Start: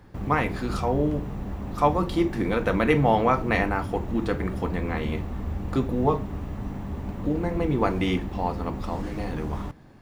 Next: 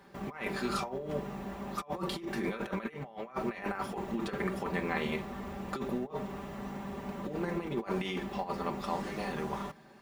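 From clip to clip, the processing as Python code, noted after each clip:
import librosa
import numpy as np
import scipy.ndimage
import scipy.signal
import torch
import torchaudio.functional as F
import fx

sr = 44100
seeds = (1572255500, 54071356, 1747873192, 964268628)

y = fx.highpass(x, sr, hz=440.0, slope=6)
y = fx.over_compress(y, sr, threshold_db=-31.0, ratio=-0.5)
y = y + 0.68 * np.pad(y, (int(5.1 * sr / 1000.0), 0))[:len(y)]
y = F.gain(torch.from_numpy(y), -4.5).numpy()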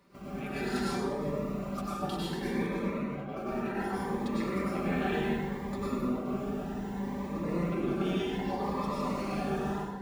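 y = fx.rev_plate(x, sr, seeds[0], rt60_s=1.8, hf_ratio=0.5, predelay_ms=85, drr_db=-8.0)
y = fx.notch_cascade(y, sr, direction='rising', hz=0.66)
y = F.gain(torch.from_numpy(y), -5.0).numpy()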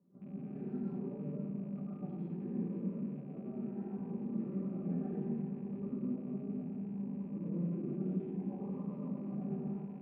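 y = fx.rattle_buzz(x, sr, strikes_db=-44.0, level_db=-25.0)
y = fx.ladder_bandpass(y, sr, hz=210.0, resonance_pct=40)
y = y + 10.0 ** (-11.5 / 20.0) * np.pad(y, (int(519 * sr / 1000.0), 0))[:len(y)]
y = F.gain(torch.from_numpy(y), 4.0).numpy()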